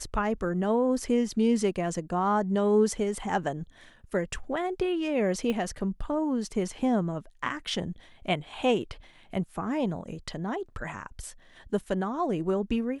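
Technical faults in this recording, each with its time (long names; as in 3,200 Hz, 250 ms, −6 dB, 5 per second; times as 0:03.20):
0:05.50: click −18 dBFS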